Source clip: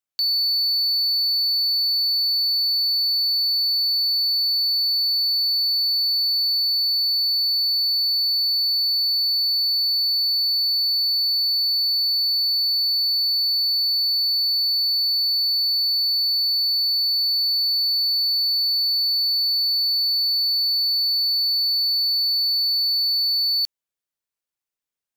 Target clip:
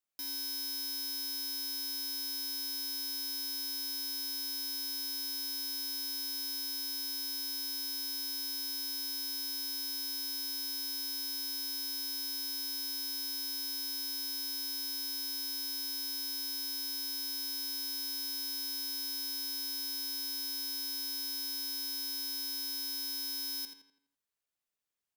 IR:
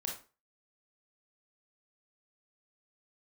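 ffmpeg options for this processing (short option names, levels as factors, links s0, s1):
-filter_complex "[0:a]aeval=exprs='(mod(37.6*val(0)+1,2)-1)/37.6':c=same,asplit=2[s0][s1];[s1]adelay=83,lowpass=f=4500:p=1,volume=0.501,asplit=2[s2][s3];[s3]adelay=83,lowpass=f=4500:p=1,volume=0.47,asplit=2[s4][s5];[s5]adelay=83,lowpass=f=4500:p=1,volume=0.47,asplit=2[s6][s7];[s7]adelay=83,lowpass=f=4500:p=1,volume=0.47,asplit=2[s8][s9];[s9]adelay=83,lowpass=f=4500:p=1,volume=0.47,asplit=2[s10][s11];[s11]adelay=83,lowpass=f=4500:p=1,volume=0.47[s12];[s0][s2][s4][s6][s8][s10][s12]amix=inputs=7:normalize=0,volume=0.75"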